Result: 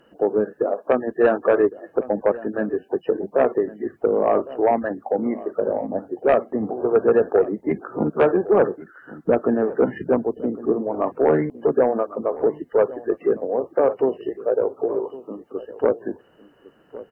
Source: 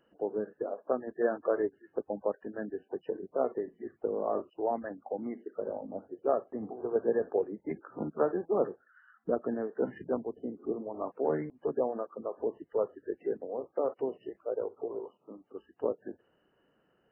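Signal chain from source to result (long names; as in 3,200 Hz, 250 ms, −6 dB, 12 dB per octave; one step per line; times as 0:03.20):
sine wavefolder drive 5 dB, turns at −14 dBFS
slap from a distant wall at 190 metres, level −17 dB
level +5 dB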